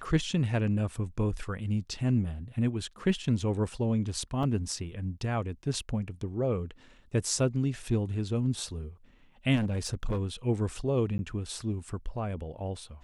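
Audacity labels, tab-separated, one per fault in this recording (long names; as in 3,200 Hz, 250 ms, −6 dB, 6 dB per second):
4.430000	4.430000	drop-out 3.9 ms
9.550000	10.260000	clipping −25.5 dBFS
11.180000	11.190000	drop-out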